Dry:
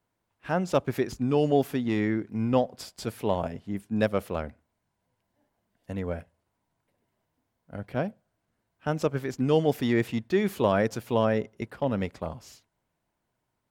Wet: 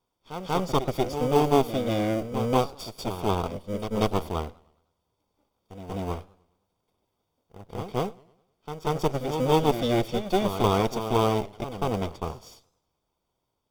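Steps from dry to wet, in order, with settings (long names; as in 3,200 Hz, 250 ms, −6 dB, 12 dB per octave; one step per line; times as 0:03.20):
lower of the sound and its delayed copy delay 0.88 ms
octave-band graphic EQ 125/250/500/2,000/4,000/8,000 Hz −5/−5/+10/−10/+10/−3 dB
in parallel at −10 dB: decimation without filtering 25×
on the sum: Butterworth band-reject 4,100 Hz, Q 7.5
on a send: backwards echo 188 ms −9.5 dB
on the sum: feedback echo with a swinging delay time 103 ms, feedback 46%, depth 160 cents, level −23 dB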